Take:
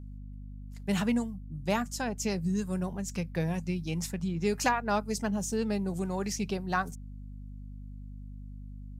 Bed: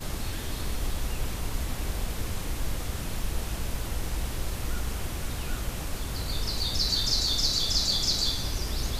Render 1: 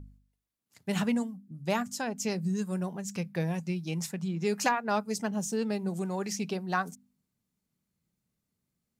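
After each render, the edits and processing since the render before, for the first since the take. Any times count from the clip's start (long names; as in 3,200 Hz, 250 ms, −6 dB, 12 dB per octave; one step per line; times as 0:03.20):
hum removal 50 Hz, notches 5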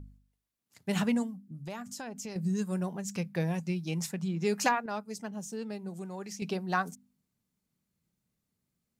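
0:01.56–0:02.36: downward compressor 4 to 1, threshold −38 dBFS
0:04.86–0:06.42: clip gain −7.5 dB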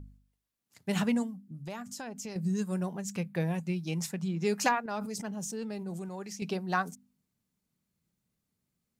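0:03.12–0:03.74: parametric band 5,400 Hz −8.5 dB 0.45 octaves
0:04.82–0:06.09: level that may fall only so fast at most 22 dB per second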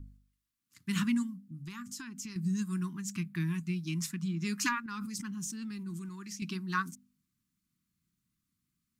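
Chebyshev band-stop filter 320–1,100 Hz, order 3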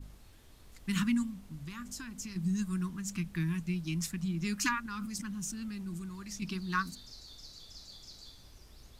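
mix in bed −25 dB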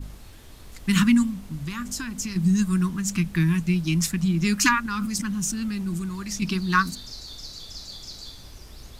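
level +11.5 dB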